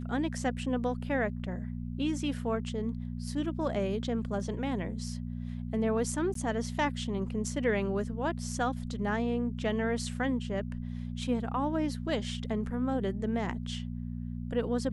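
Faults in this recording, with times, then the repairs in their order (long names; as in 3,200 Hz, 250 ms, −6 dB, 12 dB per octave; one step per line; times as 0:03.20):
mains hum 60 Hz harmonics 4 −37 dBFS
0:06.34–0:06.35: drop-out 13 ms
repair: hum removal 60 Hz, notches 4
repair the gap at 0:06.34, 13 ms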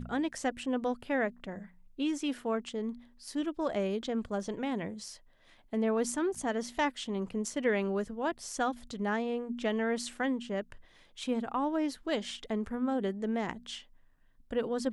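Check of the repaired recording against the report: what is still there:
none of them is left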